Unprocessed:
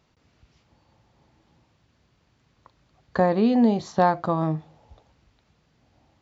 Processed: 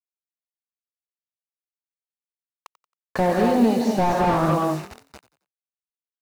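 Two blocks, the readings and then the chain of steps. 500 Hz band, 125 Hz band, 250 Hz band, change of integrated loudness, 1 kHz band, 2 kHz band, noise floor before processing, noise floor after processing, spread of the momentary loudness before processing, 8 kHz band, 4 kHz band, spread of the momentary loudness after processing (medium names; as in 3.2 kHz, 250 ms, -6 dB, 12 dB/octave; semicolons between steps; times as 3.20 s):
+2.5 dB, +2.0 dB, +1.0 dB, +2.0 dB, +3.0 dB, +4.0 dB, -66 dBFS, under -85 dBFS, 10 LU, no reading, +5.5 dB, 8 LU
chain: gated-style reverb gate 270 ms rising, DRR 2 dB; gain riding within 3 dB 0.5 s; bit crusher 7-bit; bass shelf 380 Hz -10 dB; band-stop 3.2 kHz, Q 7.3; frequency-shifting echo 90 ms, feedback 36%, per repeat +40 Hz, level -18 dB; slew-rate limiter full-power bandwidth 44 Hz; trim +7 dB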